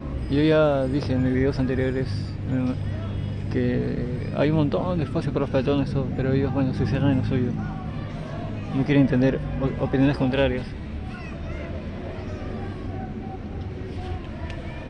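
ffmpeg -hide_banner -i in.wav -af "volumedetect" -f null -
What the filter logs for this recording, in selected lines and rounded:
mean_volume: -24.1 dB
max_volume: -7.5 dB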